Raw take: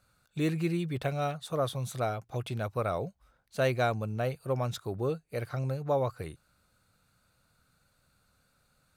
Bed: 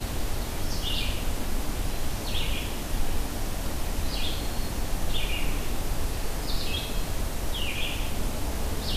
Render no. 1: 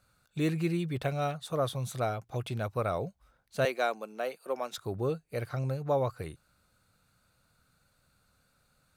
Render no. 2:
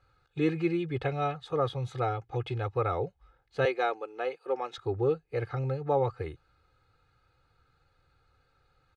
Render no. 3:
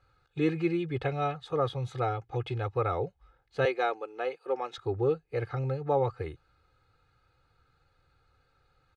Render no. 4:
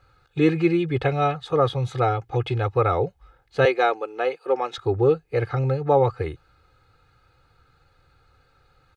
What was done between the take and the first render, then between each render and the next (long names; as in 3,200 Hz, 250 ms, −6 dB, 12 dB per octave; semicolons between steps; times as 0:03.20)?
0:03.65–0:04.78: Bessel high-pass filter 390 Hz, order 8
low-pass filter 3,000 Hz 12 dB per octave; comb filter 2.4 ms, depth 96%
no processing that can be heard
level +8.5 dB